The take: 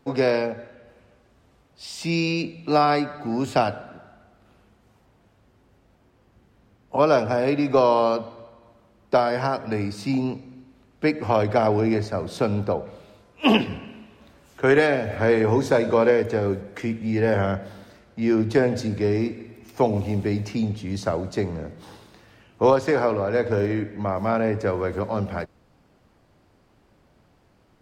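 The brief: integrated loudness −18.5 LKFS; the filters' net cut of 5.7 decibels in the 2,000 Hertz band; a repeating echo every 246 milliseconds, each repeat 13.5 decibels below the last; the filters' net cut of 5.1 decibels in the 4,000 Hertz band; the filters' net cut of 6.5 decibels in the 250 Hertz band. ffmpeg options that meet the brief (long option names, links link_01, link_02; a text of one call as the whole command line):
ffmpeg -i in.wav -af "equalizer=frequency=250:width_type=o:gain=-8.5,equalizer=frequency=2000:width_type=o:gain=-6.5,equalizer=frequency=4000:width_type=o:gain=-4.5,aecho=1:1:246|492:0.211|0.0444,volume=7.5dB" out.wav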